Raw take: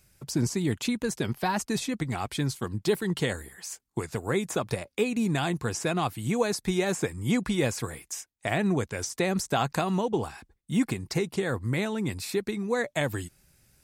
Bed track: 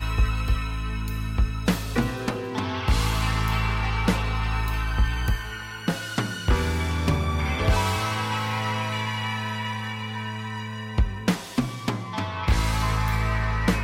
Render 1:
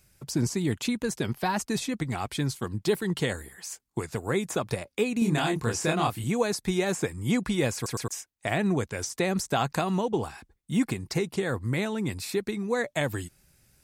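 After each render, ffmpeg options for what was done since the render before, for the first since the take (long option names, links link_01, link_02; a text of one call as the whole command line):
ffmpeg -i in.wav -filter_complex "[0:a]asettb=1/sr,asplit=3[link_01][link_02][link_03];[link_01]atrim=end=5.194[link_04];[link_02]atrim=start=5.19:end=6.24,asetpts=PTS-STARTPTS,afade=type=in:duration=0.004:curve=qsin,afade=type=out:start_time=1.046:duration=0.004:curve=qsin,asplit=2[link_05][link_06];[link_06]adelay=26,volume=-2dB[link_07];[link_05][link_07]amix=inputs=2:normalize=0,atrim=end_sample=46305[link_08];[link_03]atrim=start=6.236[link_09];[link_04][link_08]acrossfade=duration=0.004:curve1=hsin:curve2=qsin[link_10];[link_10][link_09]acrossfade=duration=0.004:curve1=qsin:curve2=hsin,asplit=4[link_11][link_12][link_13][link_14];[link_11]atrim=end=7.862[link_15];[link_12]atrim=start=7.748:end=7.862[link_16];[link_13]atrim=start=7.748:end=7.862[link_17];[link_14]atrim=start=8.078[link_18];[link_15][link_16]acrossfade=duration=0.004:curve1=hsin:curve2=hsin[link_19];[link_19][link_17]acrossfade=duration=0.004:curve1=hsin:curve2=hsin[link_20];[link_20][link_18]acrossfade=duration=0.004:curve1=hsin:curve2=hsin" out.wav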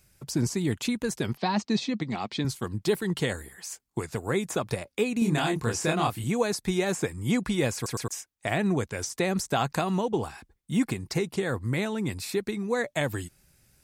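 ffmpeg -i in.wav -filter_complex "[0:a]asettb=1/sr,asplit=3[link_01][link_02][link_03];[link_01]atrim=end=1.374[link_04];[link_02]atrim=start=1.37:end=2.45,asetpts=PTS-STARTPTS,afade=type=in:duration=0.004:curve=qsin,afade=type=out:start_time=1.076:duration=0.004:curve=qsin,highpass=160,equalizer=frequency=210:width_type=q:width=4:gain=7,equalizer=frequency=1500:width_type=q:width=4:gain=-6,equalizer=frequency=4100:width_type=q:width=4:gain=5,lowpass=frequency=5800:width=0.5412,lowpass=frequency=5800:width=1.3066[link_05];[link_03]atrim=start=2.446[link_06];[link_04][link_05]acrossfade=duration=0.004:curve1=hsin:curve2=qsin[link_07];[link_07][link_06]acrossfade=duration=0.004:curve1=qsin:curve2=hsin" out.wav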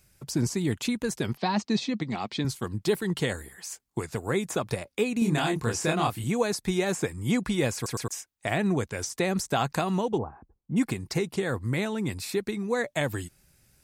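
ffmpeg -i in.wav -filter_complex "[0:a]asplit=3[link_01][link_02][link_03];[link_01]afade=type=out:start_time=10.17:duration=0.02[link_04];[link_02]lowpass=frequency=1100:width=0.5412,lowpass=frequency=1100:width=1.3066,afade=type=in:start_time=10.17:duration=0.02,afade=type=out:start_time=10.76:duration=0.02[link_05];[link_03]afade=type=in:start_time=10.76:duration=0.02[link_06];[link_04][link_05][link_06]amix=inputs=3:normalize=0" out.wav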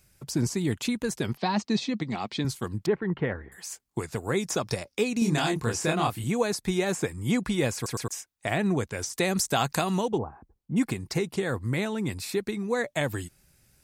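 ffmpeg -i in.wav -filter_complex "[0:a]asettb=1/sr,asplit=3[link_01][link_02][link_03];[link_01]atrim=end=2.864[link_04];[link_02]atrim=start=2.86:end=3.52,asetpts=PTS-STARTPTS,afade=type=in:duration=0.004:curve=qsin,afade=type=out:start_time=0.656:duration=0.004:curve=qsin,lowpass=frequency=2100:width=0.5412,lowpass=frequency=2100:width=1.3066[link_05];[link_03]atrim=start=3.516[link_06];[link_04][link_05]acrossfade=duration=0.004:curve1=hsin:curve2=qsin[link_07];[link_07][link_06]acrossfade=duration=0.004:curve1=qsin:curve2=hsin,asettb=1/sr,asplit=3[link_08][link_09][link_10];[link_08]atrim=end=4.374[link_11];[link_09]atrim=start=4.37:end=5.54,asetpts=PTS-STARTPTS,afade=type=in:duration=0.004:curve=qsin,afade=type=out:start_time=1.166:duration=0.004:curve=qsin,equalizer=frequency=5400:width_type=o:width=0.5:gain=12[link_12];[link_10]atrim=start=5.536[link_13];[link_11][link_12]acrossfade=duration=0.004:curve1=hsin:curve2=qsin[link_14];[link_14][link_13]acrossfade=duration=0.004:curve1=qsin:curve2=hsin,asettb=1/sr,asplit=3[link_15][link_16][link_17];[link_15]atrim=end=9.134[link_18];[link_16]atrim=start=9.13:end=10.08,asetpts=PTS-STARTPTS,afade=type=in:duration=0.004:curve=qsin,afade=type=out:start_time=0.946:duration=0.004:curve=qsin,highshelf=frequency=3400:gain=8[link_19];[link_17]atrim=start=10.076[link_20];[link_18][link_19]acrossfade=duration=0.004:curve1=hsin:curve2=qsin[link_21];[link_21][link_20]acrossfade=duration=0.004:curve1=qsin:curve2=hsin" out.wav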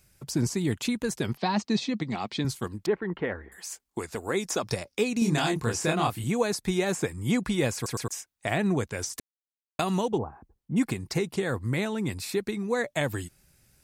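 ffmpeg -i in.wav -filter_complex "[0:a]asettb=1/sr,asplit=3[link_01][link_02][link_03];[link_01]atrim=end=2.674[link_04];[link_02]atrim=start=2.67:end=4.63,asetpts=PTS-STARTPTS,afade=type=in:duration=0.004:curve=qsin,afade=type=out:start_time=1.956:duration=0.004:curve=qsin,equalizer=frequency=130:width_type=o:width=0.77:gain=-12[link_05];[link_03]atrim=start=4.626[link_06];[link_04][link_05]acrossfade=duration=0.004:curve1=hsin:curve2=qsin[link_07];[link_07][link_06]acrossfade=duration=0.004:curve1=qsin:curve2=hsin,asplit=3[link_08][link_09][link_10];[link_08]atrim=end=9.2,asetpts=PTS-STARTPTS,afade=type=out:start_time=9.196:duration=0.004:curve=hsin[link_11];[link_09]atrim=start=9.2:end=9.79,asetpts=PTS-STARTPTS,volume=0[link_12];[link_10]atrim=start=9.79,asetpts=PTS-STARTPTS,afade=type=in:duration=0.004:curve=hsin[link_13];[link_11][link_12][link_13]concat=n=3:v=0:a=1" out.wav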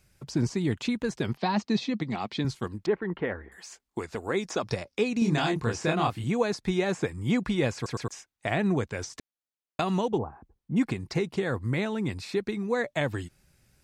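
ffmpeg -i in.wav -filter_complex "[0:a]acrossover=split=7200[link_01][link_02];[link_02]acompressor=threshold=-56dB:ratio=4:attack=1:release=60[link_03];[link_01][link_03]amix=inputs=2:normalize=0,highshelf=frequency=7600:gain=-9.5" out.wav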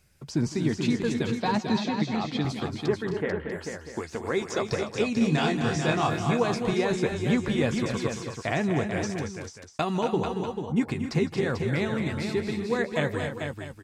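ffmpeg -i in.wav -filter_complex "[0:a]asplit=2[link_01][link_02];[link_02]adelay=13,volume=-11dB[link_03];[link_01][link_03]amix=inputs=2:normalize=0,asplit=2[link_04][link_05];[link_05]aecho=0:1:158|229|262|441|643:0.106|0.355|0.316|0.473|0.2[link_06];[link_04][link_06]amix=inputs=2:normalize=0" out.wav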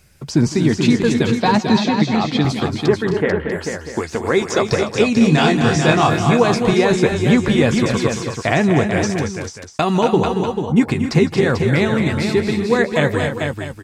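ffmpeg -i in.wav -af "volume=11dB,alimiter=limit=-3dB:level=0:latency=1" out.wav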